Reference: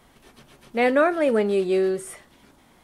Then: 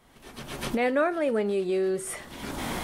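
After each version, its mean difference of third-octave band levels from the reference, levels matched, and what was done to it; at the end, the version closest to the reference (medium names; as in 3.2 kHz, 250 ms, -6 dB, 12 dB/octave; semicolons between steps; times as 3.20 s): 7.0 dB: recorder AGC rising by 38 dB/s; trim -5.5 dB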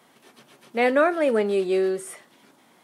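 1.0 dB: Bessel high-pass 210 Hz, order 4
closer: second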